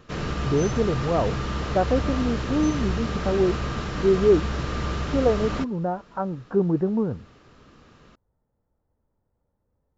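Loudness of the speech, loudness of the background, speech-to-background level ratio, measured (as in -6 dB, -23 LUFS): -25.0 LUFS, -29.0 LUFS, 4.0 dB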